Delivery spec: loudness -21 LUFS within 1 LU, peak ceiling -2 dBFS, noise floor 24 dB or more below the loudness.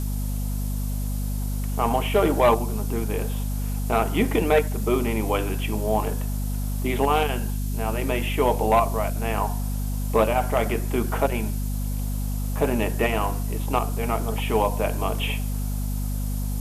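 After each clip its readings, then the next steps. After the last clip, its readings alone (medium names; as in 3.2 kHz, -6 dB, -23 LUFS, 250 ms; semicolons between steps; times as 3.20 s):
hum 50 Hz; highest harmonic 250 Hz; hum level -24 dBFS; noise floor -26 dBFS; noise floor target -49 dBFS; loudness -25.0 LUFS; peak level -9.0 dBFS; loudness target -21.0 LUFS
-> de-hum 50 Hz, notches 5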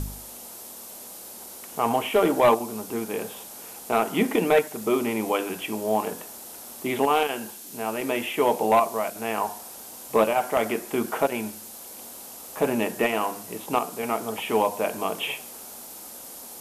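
hum not found; noise floor -42 dBFS; noise floor target -50 dBFS
-> noise print and reduce 8 dB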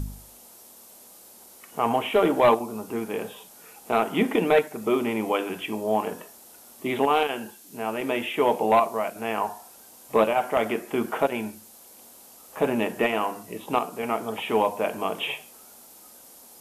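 noise floor -50 dBFS; loudness -25.5 LUFS; peak level -10.5 dBFS; loudness target -21.0 LUFS
-> trim +4.5 dB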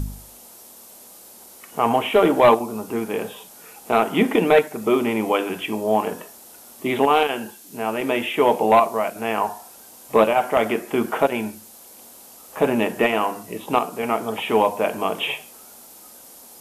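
loudness -21.0 LUFS; peak level -6.0 dBFS; noise floor -45 dBFS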